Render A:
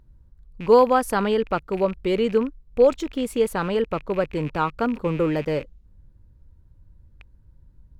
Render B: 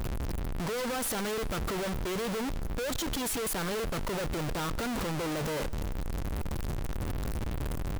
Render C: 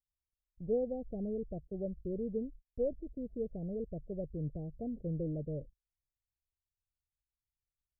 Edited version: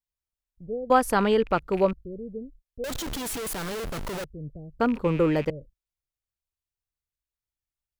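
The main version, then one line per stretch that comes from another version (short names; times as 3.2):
C
0.9–1.93 from A
2.84–4.24 from B
4.8–5.5 from A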